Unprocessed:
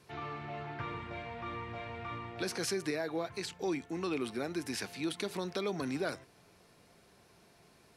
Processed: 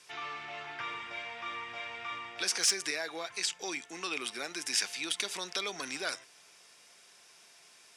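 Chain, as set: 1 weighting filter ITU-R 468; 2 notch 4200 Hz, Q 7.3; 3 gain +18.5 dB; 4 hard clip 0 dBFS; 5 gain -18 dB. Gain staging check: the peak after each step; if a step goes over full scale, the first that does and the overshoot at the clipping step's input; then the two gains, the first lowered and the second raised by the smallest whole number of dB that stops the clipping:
-12.5, -12.0, +6.5, 0.0, -18.0 dBFS; step 3, 6.5 dB; step 3 +11.5 dB, step 5 -11 dB

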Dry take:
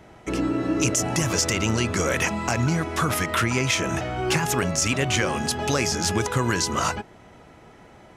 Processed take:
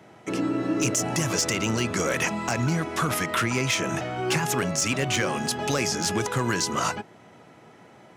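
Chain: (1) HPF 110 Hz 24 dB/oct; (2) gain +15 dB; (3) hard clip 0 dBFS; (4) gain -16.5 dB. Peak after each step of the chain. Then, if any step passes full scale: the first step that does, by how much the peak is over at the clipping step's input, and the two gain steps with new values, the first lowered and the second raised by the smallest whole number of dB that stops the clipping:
-8.0, +7.0, 0.0, -16.5 dBFS; step 2, 7.0 dB; step 2 +8 dB, step 4 -9.5 dB

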